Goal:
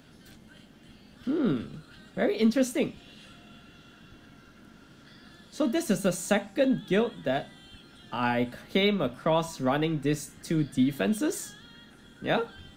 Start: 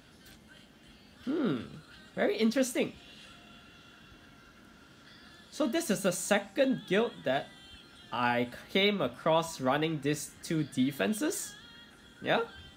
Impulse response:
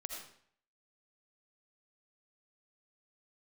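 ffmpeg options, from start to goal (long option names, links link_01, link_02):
-filter_complex "[0:a]lowshelf=frequency=350:gain=7.5,acrossover=split=110|4300[link_01][link_02][link_03];[link_01]aeval=exprs='max(val(0),0)':channel_layout=same[link_04];[link_04][link_02][link_03]amix=inputs=3:normalize=0"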